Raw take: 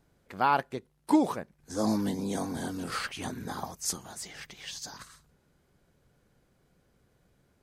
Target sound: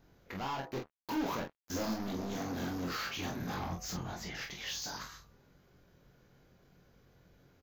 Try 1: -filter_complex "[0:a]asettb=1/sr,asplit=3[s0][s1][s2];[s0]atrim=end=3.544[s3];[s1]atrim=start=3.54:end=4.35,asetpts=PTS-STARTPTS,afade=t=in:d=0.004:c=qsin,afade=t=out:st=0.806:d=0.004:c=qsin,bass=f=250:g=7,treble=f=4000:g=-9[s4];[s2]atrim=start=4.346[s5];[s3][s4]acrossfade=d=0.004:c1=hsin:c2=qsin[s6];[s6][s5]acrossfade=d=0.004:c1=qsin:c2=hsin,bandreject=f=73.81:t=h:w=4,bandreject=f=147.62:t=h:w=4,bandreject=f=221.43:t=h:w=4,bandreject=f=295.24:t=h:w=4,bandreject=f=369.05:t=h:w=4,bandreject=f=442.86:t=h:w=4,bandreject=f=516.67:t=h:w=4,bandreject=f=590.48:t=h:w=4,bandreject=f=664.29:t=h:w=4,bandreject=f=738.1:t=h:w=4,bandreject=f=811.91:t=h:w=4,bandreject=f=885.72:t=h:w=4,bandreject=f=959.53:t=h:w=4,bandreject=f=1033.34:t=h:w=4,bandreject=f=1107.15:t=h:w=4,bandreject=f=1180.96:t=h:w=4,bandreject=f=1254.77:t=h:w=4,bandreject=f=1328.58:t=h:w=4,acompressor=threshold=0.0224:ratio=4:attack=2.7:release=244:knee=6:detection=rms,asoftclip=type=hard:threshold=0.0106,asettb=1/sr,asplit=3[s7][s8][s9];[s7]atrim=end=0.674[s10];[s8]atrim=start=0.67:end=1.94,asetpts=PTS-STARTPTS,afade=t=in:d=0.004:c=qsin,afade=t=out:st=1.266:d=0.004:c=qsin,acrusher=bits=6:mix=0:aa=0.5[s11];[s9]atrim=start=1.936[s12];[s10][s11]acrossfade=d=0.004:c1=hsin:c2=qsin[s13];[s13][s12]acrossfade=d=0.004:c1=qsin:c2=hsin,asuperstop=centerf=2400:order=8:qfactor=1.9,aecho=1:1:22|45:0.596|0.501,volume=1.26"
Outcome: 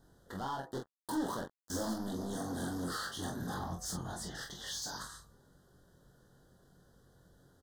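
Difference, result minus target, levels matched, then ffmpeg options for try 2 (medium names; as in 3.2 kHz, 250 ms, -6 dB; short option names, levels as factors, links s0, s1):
compression: peak gain reduction +4.5 dB; 8 kHz band +3.0 dB
-filter_complex "[0:a]asettb=1/sr,asplit=3[s0][s1][s2];[s0]atrim=end=3.544[s3];[s1]atrim=start=3.54:end=4.35,asetpts=PTS-STARTPTS,afade=t=in:d=0.004:c=qsin,afade=t=out:st=0.806:d=0.004:c=qsin,bass=f=250:g=7,treble=f=4000:g=-9[s4];[s2]atrim=start=4.346[s5];[s3][s4]acrossfade=d=0.004:c1=hsin:c2=qsin[s6];[s6][s5]acrossfade=d=0.004:c1=qsin:c2=hsin,bandreject=f=73.81:t=h:w=4,bandreject=f=147.62:t=h:w=4,bandreject=f=221.43:t=h:w=4,bandreject=f=295.24:t=h:w=4,bandreject=f=369.05:t=h:w=4,bandreject=f=442.86:t=h:w=4,bandreject=f=516.67:t=h:w=4,bandreject=f=590.48:t=h:w=4,bandreject=f=664.29:t=h:w=4,bandreject=f=738.1:t=h:w=4,bandreject=f=811.91:t=h:w=4,bandreject=f=885.72:t=h:w=4,bandreject=f=959.53:t=h:w=4,bandreject=f=1033.34:t=h:w=4,bandreject=f=1107.15:t=h:w=4,bandreject=f=1180.96:t=h:w=4,bandreject=f=1254.77:t=h:w=4,bandreject=f=1328.58:t=h:w=4,acompressor=threshold=0.0447:ratio=4:attack=2.7:release=244:knee=6:detection=rms,asoftclip=type=hard:threshold=0.0106,asettb=1/sr,asplit=3[s7][s8][s9];[s7]atrim=end=0.674[s10];[s8]atrim=start=0.67:end=1.94,asetpts=PTS-STARTPTS,afade=t=in:d=0.004:c=qsin,afade=t=out:st=1.266:d=0.004:c=qsin,acrusher=bits=6:mix=0:aa=0.5[s11];[s9]atrim=start=1.936[s12];[s10][s11]acrossfade=d=0.004:c1=hsin:c2=qsin[s13];[s13][s12]acrossfade=d=0.004:c1=qsin:c2=hsin,asuperstop=centerf=9300:order=8:qfactor=1.9,aecho=1:1:22|45:0.596|0.501,volume=1.26"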